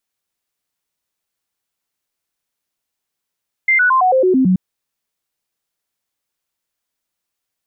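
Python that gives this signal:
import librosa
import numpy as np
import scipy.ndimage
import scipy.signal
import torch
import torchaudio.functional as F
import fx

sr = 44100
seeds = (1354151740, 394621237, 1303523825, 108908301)

y = fx.stepped_sweep(sr, from_hz=2090.0, direction='down', per_octave=2, tones=8, dwell_s=0.11, gap_s=0.0, level_db=-9.5)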